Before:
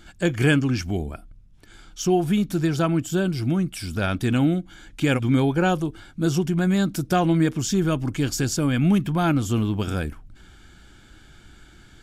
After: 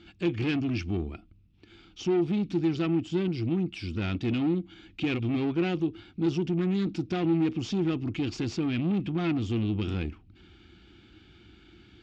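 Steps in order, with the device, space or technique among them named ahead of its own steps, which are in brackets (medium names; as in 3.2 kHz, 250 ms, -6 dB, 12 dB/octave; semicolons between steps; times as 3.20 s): guitar amplifier (valve stage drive 23 dB, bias 0.4; tone controls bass +5 dB, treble +2 dB; cabinet simulation 81–4500 Hz, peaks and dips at 140 Hz -8 dB, 340 Hz +8 dB, 590 Hz -9 dB, 990 Hz -4 dB, 1.6 kHz -7 dB, 2.6 kHz +7 dB); trim -3.5 dB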